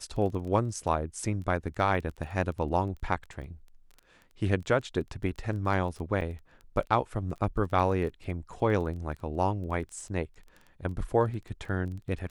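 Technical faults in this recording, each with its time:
crackle 14/s -38 dBFS
6.21 gap 4.8 ms

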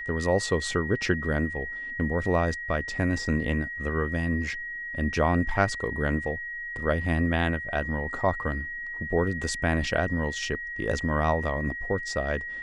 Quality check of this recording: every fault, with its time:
tone 1900 Hz -33 dBFS

